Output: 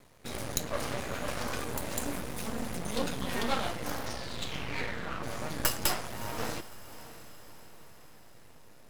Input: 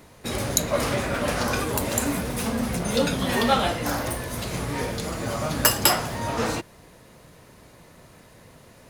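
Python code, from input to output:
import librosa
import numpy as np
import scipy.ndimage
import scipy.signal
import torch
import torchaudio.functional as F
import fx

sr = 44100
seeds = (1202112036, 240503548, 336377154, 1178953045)

y = fx.lowpass_res(x, sr, hz=fx.line((4.06, 5900.0), (5.22, 1300.0)), q=5.1, at=(4.06, 5.22), fade=0.02)
y = np.maximum(y, 0.0)
y = fx.echo_diffused(y, sr, ms=616, feedback_pct=52, wet_db=-15.0)
y = F.gain(torch.from_numpy(y), -6.0).numpy()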